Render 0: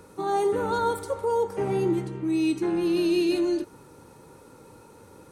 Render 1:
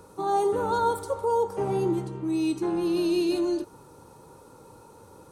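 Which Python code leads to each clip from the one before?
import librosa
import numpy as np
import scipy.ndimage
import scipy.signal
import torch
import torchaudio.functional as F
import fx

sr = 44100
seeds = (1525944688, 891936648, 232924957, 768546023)

y = fx.graphic_eq_10(x, sr, hz=(250, 1000, 2000), db=(-3, 4, -8))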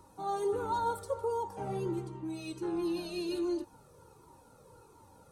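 y = fx.comb_cascade(x, sr, direction='falling', hz=1.4)
y = F.gain(torch.from_numpy(y), -3.0).numpy()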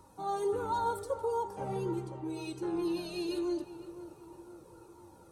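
y = fx.echo_filtered(x, sr, ms=508, feedback_pct=57, hz=1700.0, wet_db=-13)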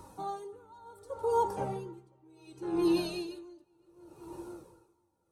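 y = x * 10.0 ** (-29 * (0.5 - 0.5 * np.cos(2.0 * np.pi * 0.68 * np.arange(len(x)) / sr)) / 20.0)
y = F.gain(torch.from_numpy(y), 7.0).numpy()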